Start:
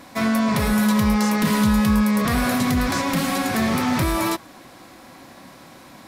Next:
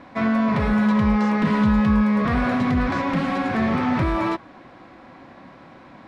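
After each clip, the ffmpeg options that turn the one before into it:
ffmpeg -i in.wav -af "lowpass=2300" out.wav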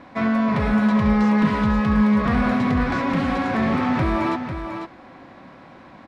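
ffmpeg -i in.wav -af "aecho=1:1:497:0.398" out.wav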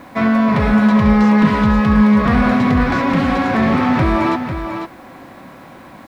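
ffmpeg -i in.wav -af "acrusher=bits=9:mix=0:aa=0.000001,volume=6dB" out.wav

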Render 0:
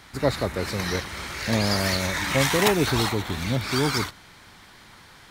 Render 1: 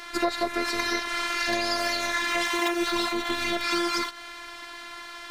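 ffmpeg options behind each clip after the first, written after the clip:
ffmpeg -i in.wav -filter_complex "[0:a]afftfilt=real='hypot(re,im)*cos(PI*b)':imag='0':win_size=512:overlap=0.75,asplit=2[link_01][link_02];[link_02]highpass=frequency=720:poles=1,volume=10dB,asoftclip=type=tanh:threshold=-2.5dB[link_03];[link_01][link_03]amix=inputs=2:normalize=0,lowpass=frequency=4000:poles=1,volume=-6dB,acompressor=threshold=-30dB:ratio=6,volume=8.5dB" out.wav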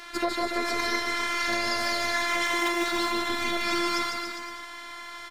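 ffmpeg -i in.wav -af "aecho=1:1:150|285|406.5|515.8|614.3:0.631|0.398|0.251|0.158|0.1,volume=-2.5dB" out.wav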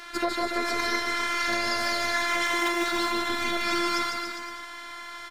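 ffmpeg -i in.wav -af "equalizer=frequency=1500:width_type=o:width=0.23:gain=4.5" out.wav

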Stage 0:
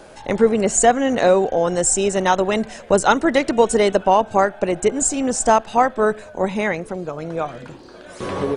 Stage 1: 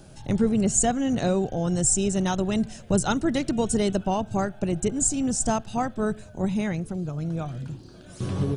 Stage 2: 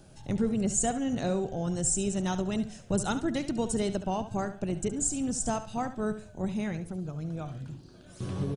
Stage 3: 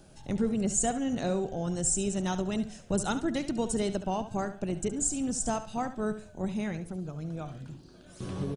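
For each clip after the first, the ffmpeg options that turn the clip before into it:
ffmpeg -i in.wav -af "equalizer=frequency=125:width_type=o:width=1:gain=9,equalizer=frequency=250:width_type=o:width=1:gain=-3,equalizer=frequency=500:width_type=o:width=1:gain=-12,equalizer=frequency=1000:width_type=o:width=1:gain=-11,equalizer=frequency=2000:width_type=o:width=1:gain=-12,equalizer=frequency=4000:width_type=o:width=1:gain=-4,equalizer=frequency=8000:width_type=o:width=1:gain=-4,volume=1.5dB" out.wav
ffmpeg -i in.wav -af "aecho=1:1:70|140|210:0.251|0.0653|0.017,volume=-6dB" out.wav
ffmpeg -i in.wav -af "equalizer=frequency=110:width_type=o:width=0.67:gain=-6" out.wav

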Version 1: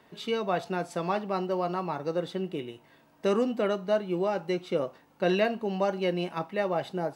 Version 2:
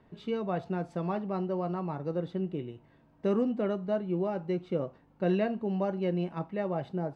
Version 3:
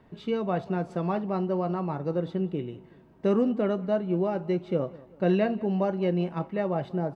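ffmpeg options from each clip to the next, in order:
ffmpeg -i in.wav -af "aemphasis=mode=reproduction:type=riaa,volume=-6.5dB" out.wav
ffmpeg -i in.wav -filter_complex "[0:a]asplit=2[link_01][link_02];[link_02]adelay=190,lowpass=frequency=3700:poles=1,volume=-20.5dB,asplit=2[link_03][link_04];[link_04]adelay=190,lowpass=frequency=3700:poles=1,volume=0.48,asplit=2[link_05][link_06];[link_06]adelay=190,lowpass=frequency=3700:poles=1,volume=0.48,asplit=2[link_07][link_08];[link_08]adelay=190,lowpass=frequency=3700:poles=1,volume=0.48[link_09];[link_01][link_03][link_05][link_07][link_09]amix=inputs=5:normalize=0,volume=4dB" out.wav

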